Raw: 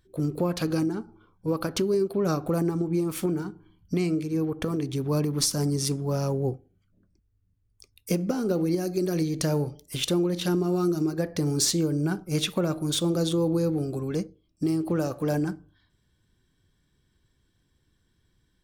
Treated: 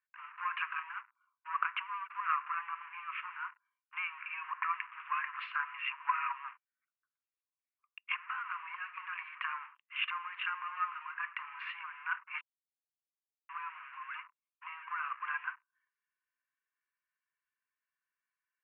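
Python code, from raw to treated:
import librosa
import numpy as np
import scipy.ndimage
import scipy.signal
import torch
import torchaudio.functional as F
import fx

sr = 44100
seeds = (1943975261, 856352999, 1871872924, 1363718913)

y = fx.filter_held_lowpass(x, sr, hz=5.4, low_hz=960.0, high_hz=4100.0, at=(4.19, 8.16), fade=0.02)
y = fx.edit(y, sr, fx.silence(start_s=12.41, length_s=1.08), tone=tone)
y = fx.leveller(y, sr, passes=3)
y = scipy.signal.sosfilt(scipy.signal.cheby1(5, 1.0, [1000.0, 2800.0], 'bandpass', fs=sr, output='sos'), y)
y = y * librosa.db_to_amplitude(-5.0)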